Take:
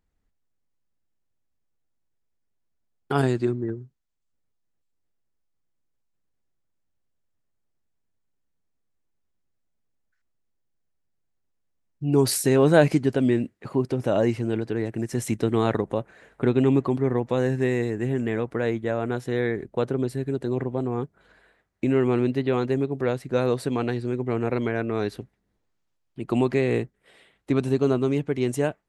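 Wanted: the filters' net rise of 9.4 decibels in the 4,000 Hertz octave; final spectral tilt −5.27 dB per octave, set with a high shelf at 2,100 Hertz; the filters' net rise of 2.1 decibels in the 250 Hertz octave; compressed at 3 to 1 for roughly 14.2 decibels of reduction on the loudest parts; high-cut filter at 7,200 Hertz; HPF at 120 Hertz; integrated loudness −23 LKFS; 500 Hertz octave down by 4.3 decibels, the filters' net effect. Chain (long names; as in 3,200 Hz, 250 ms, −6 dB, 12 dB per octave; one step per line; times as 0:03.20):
high-pass filter 120 Hz
low-pass filter 7,200 Hz
parametric band 250 Hz +5 dB
parametric band 500 Hz −8.5 dB
high-shelf EQ 2,100 Hz +8.5 dB
parametric band 4,000 Hz +4 dB
downward compressor 3 to 1, threshold −35 dBFS
level +13 dB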